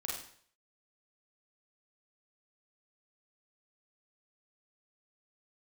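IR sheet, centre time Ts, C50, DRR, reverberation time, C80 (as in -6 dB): 48 ms, 2.5 dB, -4.0 dB, 0.55 s, 6.5 dB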